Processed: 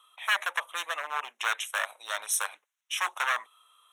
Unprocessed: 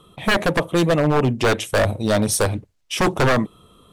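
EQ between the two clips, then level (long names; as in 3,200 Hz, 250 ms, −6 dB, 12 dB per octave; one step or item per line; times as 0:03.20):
high-pass filter 1,000 Hz 24 dB per octave
Butterworth band-reject 4,700 Hz, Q 2.6
notch filter 7,500 Hz, Q 14
−5.0 dB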